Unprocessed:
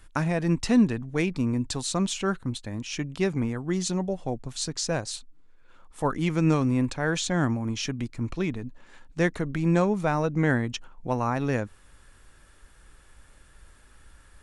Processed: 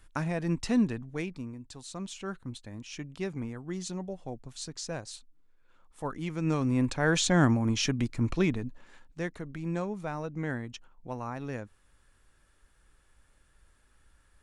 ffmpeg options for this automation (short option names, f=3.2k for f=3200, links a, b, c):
-af "volume=14.5dB,afade=t=out:st=0.94:d=0.65:silence=0.237137,afade=t=in:st=1.59:d=0.93:silence=0.354813,afade=t=in:st=6.39:d=0.85:silence=0.281838,afade=t=out:st=8.43:d=0.78:silence=0.237137"